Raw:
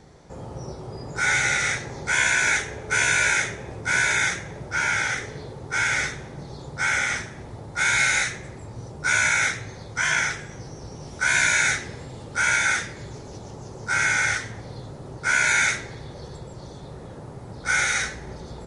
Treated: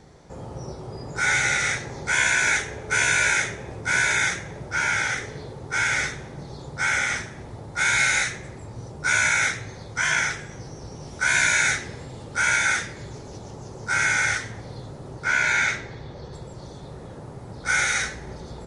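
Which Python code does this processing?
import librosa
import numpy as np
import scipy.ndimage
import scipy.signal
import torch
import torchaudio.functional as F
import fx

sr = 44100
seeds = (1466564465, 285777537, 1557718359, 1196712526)

y = fx.air_absorb(x, sr, metres=94.0, at=(15.24, 16.33))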